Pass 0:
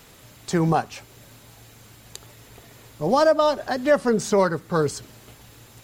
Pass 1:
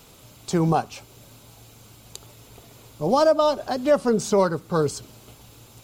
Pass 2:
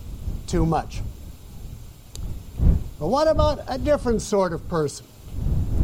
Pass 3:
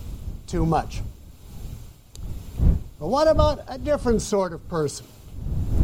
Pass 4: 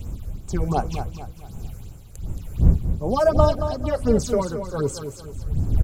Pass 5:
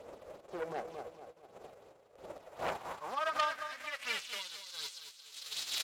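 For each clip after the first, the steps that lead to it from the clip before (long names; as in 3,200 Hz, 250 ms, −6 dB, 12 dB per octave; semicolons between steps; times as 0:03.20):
parametric band 1,800 Hz −10.5 dB 0.41 octaves
wind on the microphone 86 Hz −25 dBFS; level −1.5 dB
amplitude tremolo 1.2 Hz, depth 59%; level +1.5 dB
all-pass phaser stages 6, 2.7 Hz, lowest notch 230–4,600 Hz; on a send: repeating echo 224 ms, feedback 40%, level −9 dB; on the sum: level +1.5 dB
spectral envelope flattened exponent 0.3; band-pass filter sweep 540 Hz → 3,900 Hz, 0:02.27–0:04.64; saturating transformer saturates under 2,600 Hz; level −7.5 dB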